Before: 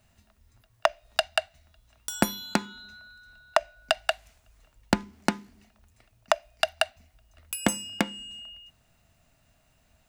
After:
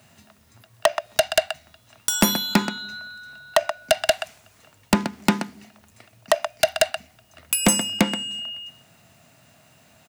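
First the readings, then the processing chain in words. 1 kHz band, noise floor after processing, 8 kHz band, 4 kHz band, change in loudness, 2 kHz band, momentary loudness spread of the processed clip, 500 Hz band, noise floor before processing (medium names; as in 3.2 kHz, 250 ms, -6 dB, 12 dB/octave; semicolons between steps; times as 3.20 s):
+3.5 dB, -58 dBFS, +11.0 dB, +7.0 dB, +6.5 dB, +4.5 dB, 16 LU, +7.5 dB, -66 dBFS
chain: high-pass 110 Hz 24 dB/octave; delay 129 ms -17 dB; in parallel at -8 dB: sine folder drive 14 dB, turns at -4.5 dBFS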